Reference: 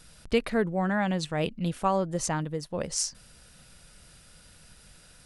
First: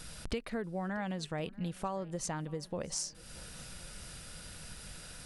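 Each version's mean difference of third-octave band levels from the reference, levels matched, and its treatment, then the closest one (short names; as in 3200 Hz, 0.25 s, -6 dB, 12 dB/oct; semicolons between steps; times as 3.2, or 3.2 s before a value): 8.5 dB: compressor 5:1, threshold -42 dBFS, peak gain reduction 20.5 dB; on a send: swung echo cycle 1.063 s, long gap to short 1.5:1, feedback 33%, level -23 dB; on the sum: gain +6 dB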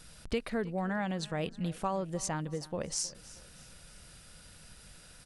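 4.5 dB: compressor 2:1, threshold -35 dBFS, peak gain reduction 9 dB; on a send: feedback echo 0.315 s, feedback 42%, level -19.5 dB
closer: second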